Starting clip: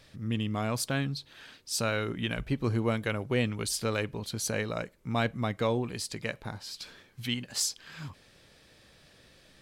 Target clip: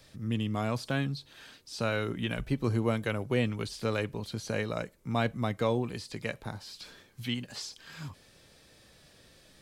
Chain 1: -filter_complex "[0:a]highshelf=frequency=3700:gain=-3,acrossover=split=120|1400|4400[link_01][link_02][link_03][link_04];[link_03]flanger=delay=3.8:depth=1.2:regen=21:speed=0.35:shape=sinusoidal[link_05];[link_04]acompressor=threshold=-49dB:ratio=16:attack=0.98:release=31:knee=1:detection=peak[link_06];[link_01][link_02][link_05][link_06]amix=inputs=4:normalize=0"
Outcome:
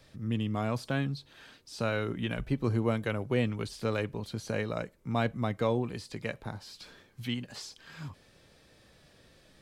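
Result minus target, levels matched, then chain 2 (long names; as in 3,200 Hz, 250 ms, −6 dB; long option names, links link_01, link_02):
8,000 Hz band −3.0 dB
-filter_complex "[0:a]highshelf=frequency=3700:gain=4,acrossover=split=120|1400|4400[link_01][link_02][link_03][link_04];[link_03]flanger=delay=3.8:depth=1.2:regen=21:speed=0.35:shape=sinusoidal[link_05];[link_04]acompressor=threshold=-49dB:ratio=16:attack=0.98:release=31:knee=1:detection=peak[link_06];[link_01][link_02][link_05][link_06]amix=inputs=4:normalize=0"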